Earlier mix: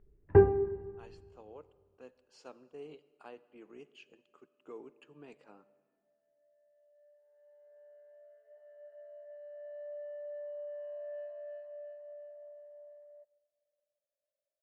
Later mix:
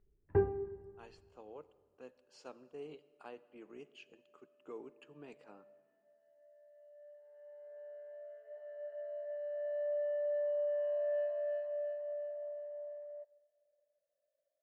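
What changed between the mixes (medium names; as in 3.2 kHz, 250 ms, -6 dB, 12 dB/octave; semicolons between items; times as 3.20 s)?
first sound -9.0 dB; second sound +8.0 dB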